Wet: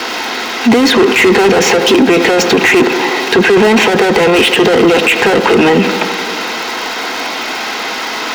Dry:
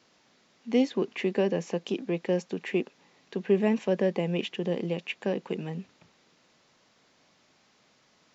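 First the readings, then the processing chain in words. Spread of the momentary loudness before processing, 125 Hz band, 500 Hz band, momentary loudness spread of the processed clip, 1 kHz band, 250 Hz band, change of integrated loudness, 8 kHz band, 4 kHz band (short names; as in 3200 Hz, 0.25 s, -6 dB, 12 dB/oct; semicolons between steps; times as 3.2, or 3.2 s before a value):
11 LU, +13.0 dB, +19.5 dB, 10 LU, +29.0 dB, +18.5 dB, +19.5 dB, n/a, +28.5 dB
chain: median filter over 5 samples; steep high-pass 210 Hz 36 dB/oct; overdrive pedal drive 36 dB, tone 3700 Hz, clips at -13 dBFS; notch comb 580 Hz; crackle 360/s -40 dBFS; tape echo 87 ms, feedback 84%, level -14 dB, low-pass 2400 Hz; maximiser +22 dB; gain -1 dB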